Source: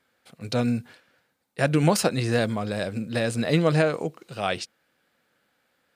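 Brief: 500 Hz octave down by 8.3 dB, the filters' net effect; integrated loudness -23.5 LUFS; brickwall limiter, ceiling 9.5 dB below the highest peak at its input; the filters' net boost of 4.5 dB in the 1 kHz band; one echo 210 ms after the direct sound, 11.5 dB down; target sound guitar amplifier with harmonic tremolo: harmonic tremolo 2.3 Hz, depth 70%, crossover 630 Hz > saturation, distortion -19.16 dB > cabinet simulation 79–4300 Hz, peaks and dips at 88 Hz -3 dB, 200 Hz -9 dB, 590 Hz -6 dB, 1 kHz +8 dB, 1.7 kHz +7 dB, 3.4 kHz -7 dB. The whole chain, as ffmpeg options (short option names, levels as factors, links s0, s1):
-filter_complex "[0:a]equalizer=f=500:t=o:g=-8.5,equalizer=f=1000:t=o:g=4.5,alimiter=limit=0.15:level=0:latency=1,aecho=1:1:210:0.266,acrossover=split=630[s0][s1];[s0]aeval=exprs='val(0)*(1-0.7/2+0.7/2*cos(2*PI*2.3*n/s))':c=same[s2];[s1]aeval=exprs='val(0)*(1-0.7/2-0.7/2*cos(2*PI*2.3*n/s))':c=same[s3];[s2][s3]amix=inputs=2:normalize=0,asoftclip=threshold=0.0794,highpass=79,equalizer=f=88:t=q:w=4:g=-3,equalizer=f=200:t=q:w=4:g=-9,equalizer=f=590:t=q:w=4:g=-6,equalizer=f=1000:t=q:w=4:g=8,equalizer=f=1700:t=q:w=4:g=7,equalizer=f=3400:t=q:w=4:g=-7,lowpass=f=4300:w=0.5412,lowpass=f=4300:w=1.3066,volume=3.35"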